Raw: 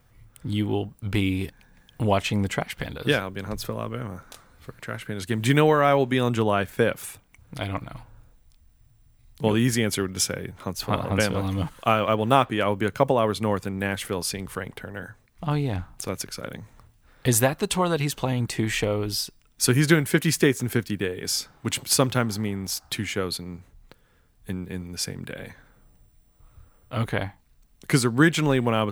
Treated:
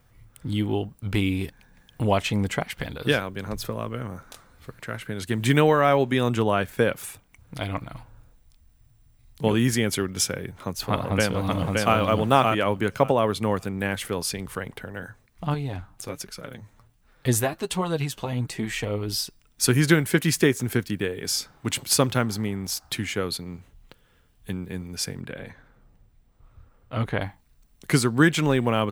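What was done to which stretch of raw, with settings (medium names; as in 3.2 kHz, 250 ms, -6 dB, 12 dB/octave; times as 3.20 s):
10.91–11.97 s: echo throw 570 ms, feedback 15%, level -2.5 dB
15.54–19.09 s: flange 1.3 Hz, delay 4.4 ms, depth 6.2 ms, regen +34%
23.47–24.57 s: peaking EQ 3 kHz +6.5 dB 0.44 oct
25.21–27.21 s: low-pass 3.4 kHz 6 dB/octave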